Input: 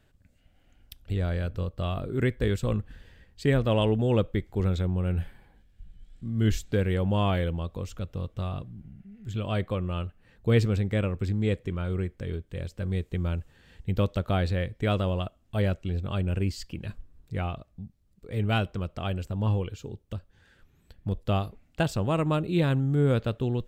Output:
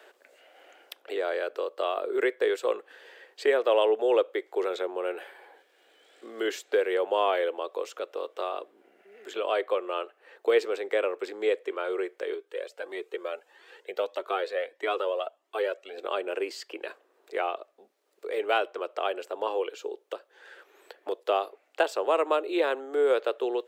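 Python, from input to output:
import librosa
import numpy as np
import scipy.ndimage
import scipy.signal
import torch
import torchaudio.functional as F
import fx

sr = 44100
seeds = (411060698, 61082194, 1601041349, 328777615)

y = fx.comb_cascade(x, sr, direction='rising', hz=1.6, at=(12.34, 15.98))
y = scipy.signal.sosfilt(scipy.signal.butter(8, 380.0, 'highpass', fs=sr, output='sos'), y)
y = fx.high_shelf(y, sr, hz=2800.0, db=-9.0)
y = fx.band_squash(y, sr, depth_pct=40)
y = F.gain(torch.from_numpy(y), 7.0).numpy()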